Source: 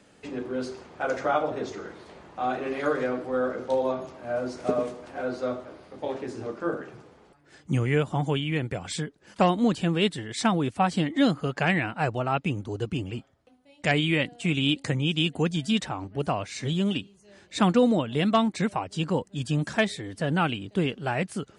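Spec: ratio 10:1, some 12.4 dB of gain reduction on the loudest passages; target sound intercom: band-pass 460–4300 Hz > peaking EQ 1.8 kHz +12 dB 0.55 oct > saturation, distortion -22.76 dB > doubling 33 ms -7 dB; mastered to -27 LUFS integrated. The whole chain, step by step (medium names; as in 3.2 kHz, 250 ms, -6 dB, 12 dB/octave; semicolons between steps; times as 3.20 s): compression 10:1, threshold -29 dBFS; band-pass 460–4300 Hz; peaking EQ 1.8 kHz +12 dB 0.55 oct; saturation -19 dBFS; doubling 33 ms -7 dB; trim +8 dB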